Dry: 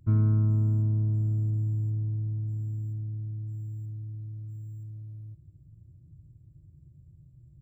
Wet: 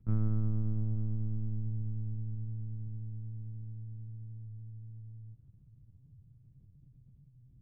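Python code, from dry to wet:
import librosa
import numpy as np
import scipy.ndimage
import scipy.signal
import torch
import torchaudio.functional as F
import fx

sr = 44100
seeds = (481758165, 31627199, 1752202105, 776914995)

p1 = x + fx.echo_thinned(x, sr, ms=443, feedback_pct=79, hz=330.0, wet_db=-23, dry=0)
p2 = fx.lpc_vocoder(p1, sr, seeds[0], excitation='pitch_kept', order=8)
y = p2 * librosa.db_to_amplitude(-5.5)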